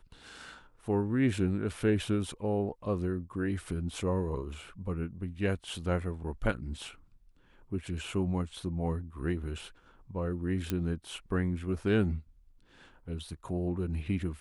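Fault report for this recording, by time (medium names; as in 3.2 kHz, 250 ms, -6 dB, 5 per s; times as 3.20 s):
10.70 s: pop -16 dBFS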